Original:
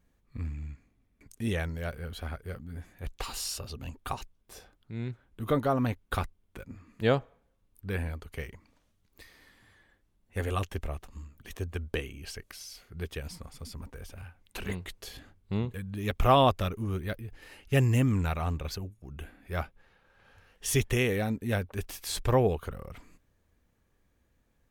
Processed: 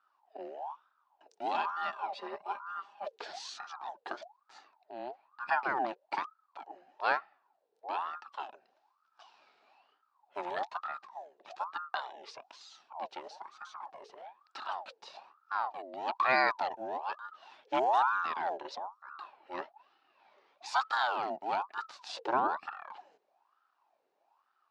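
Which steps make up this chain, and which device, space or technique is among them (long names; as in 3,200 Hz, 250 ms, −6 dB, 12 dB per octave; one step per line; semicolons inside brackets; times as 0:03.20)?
voice changer toy (ring modulator whose carrier an LFO sweeps 880 Hz, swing 50%, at 1.1 Hz; loudspeaker in its box 450–4,900 Hz, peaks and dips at 490 Hz −10 dB, 820 Hz +5 dB, 1,200 Hz −3 dB, 2,100 Hz −7 dB, 3,200 Hz −5 dB)
0:01.54–0:03.19: comb filter 5 ms, depth 100%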